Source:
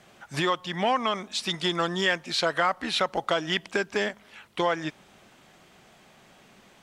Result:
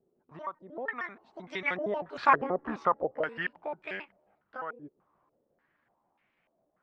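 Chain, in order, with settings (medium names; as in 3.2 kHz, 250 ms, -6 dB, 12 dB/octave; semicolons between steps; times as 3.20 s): pitch shift switched off and on +8 st, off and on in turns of 83 ms; Doppler pass-by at 2.42 s, 23 m/s, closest 4.8 m; step-sequenced low-pass 3.4 Hz 410–2200 Hz; trim +2 dB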